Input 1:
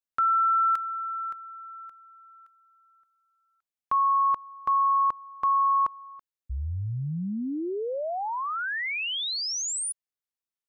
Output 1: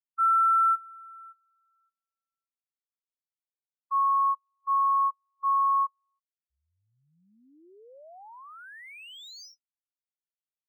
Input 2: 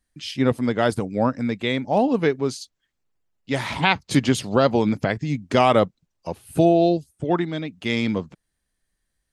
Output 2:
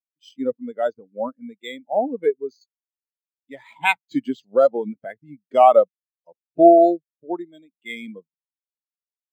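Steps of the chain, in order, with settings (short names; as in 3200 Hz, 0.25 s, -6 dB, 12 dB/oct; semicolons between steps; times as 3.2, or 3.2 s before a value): RIAA curve recording; careless resampling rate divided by 4×, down filtered, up hold; spectral expander 2.5:1; gain -1 dB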